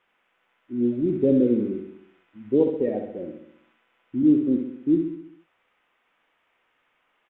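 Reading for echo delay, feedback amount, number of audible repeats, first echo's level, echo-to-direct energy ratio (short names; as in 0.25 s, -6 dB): 66 ms, 55%, 6, -6.5 dB, -5.0 dB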